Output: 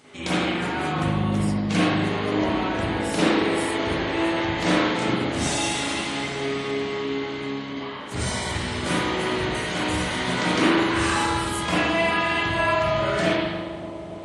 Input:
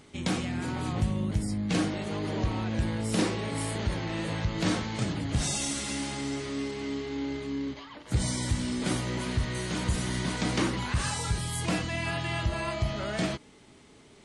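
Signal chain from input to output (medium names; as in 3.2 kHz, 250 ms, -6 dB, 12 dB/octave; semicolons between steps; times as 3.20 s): high-pass 390 Hz 6 dB/octave; on a send: bucket-brigade echo 285 ms, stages 2048, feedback 79%, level -11.5 dB; on the sum: spring tank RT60 1.2 s, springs 39/51 ms, chirp 40 ms, DRR -9 dB; trim +2 dB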